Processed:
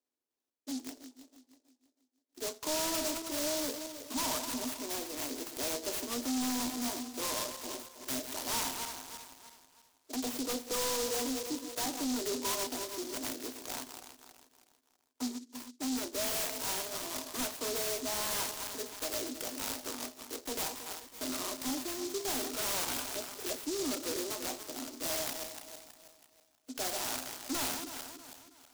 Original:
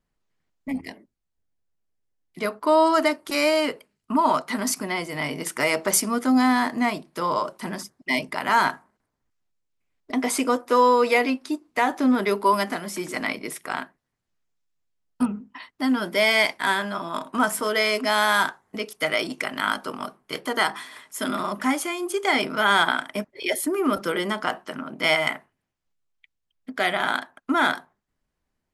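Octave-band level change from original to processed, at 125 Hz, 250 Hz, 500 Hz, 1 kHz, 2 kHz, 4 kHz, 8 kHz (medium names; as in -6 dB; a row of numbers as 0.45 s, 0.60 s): -13.5 dB, -13.0 dB, -14.0 dB, -18.0 dB, -19.5 dB, -8.0 dB, -2.0 dB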